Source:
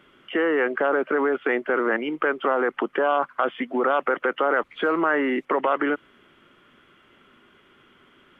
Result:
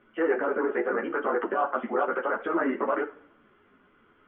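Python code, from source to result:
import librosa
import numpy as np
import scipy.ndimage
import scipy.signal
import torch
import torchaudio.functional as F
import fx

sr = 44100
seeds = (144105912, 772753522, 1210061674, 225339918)

y = scipy.signal.sosfilt(scipy.signal.butter(2, 1700.0, 'lowpass', fs=sr, output='sos'), x)
y = fx.rev_double_slope(y, sr, seeds[0], early_s=0.73, late_s=2.2, knee_db=-18, drr_db=7.0)
y = fx.stretch_grains(y, sr, factor=0.51, grain_ms=38.0)
y = fx.ensemble(y, sr)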